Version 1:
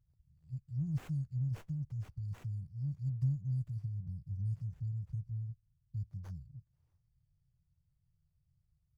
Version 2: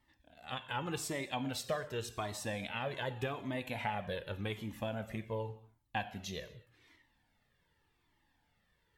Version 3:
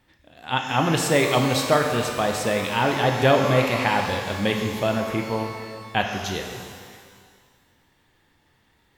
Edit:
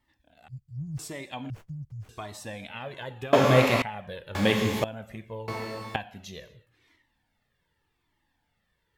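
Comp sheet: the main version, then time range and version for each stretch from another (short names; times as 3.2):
2
0.48–0.99 from 1
1.5–2.09 from 1
3.33–3.82 from 3
4.35–4.84 from 3
5.48–5.96 from 3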